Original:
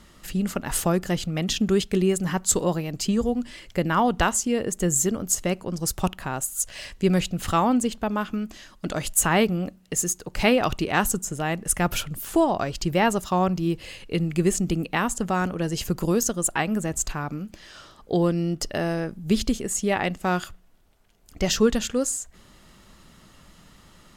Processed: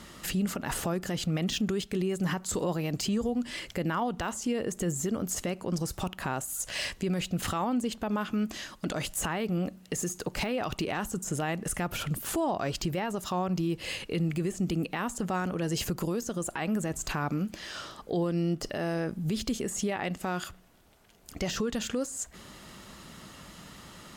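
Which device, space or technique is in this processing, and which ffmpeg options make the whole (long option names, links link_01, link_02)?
podcast mastering chain: -af "highpass=frequency=100:poles=1,deesser=0.65,acompressor=threshold=-31dB:ratio=3,alimiter=level_in=3dB:limit=-24dB:level=0:latency=1:release=34,volume=-3dB,volume=6dB" -ar 44100 -c:a libmp3lame -b:a 128k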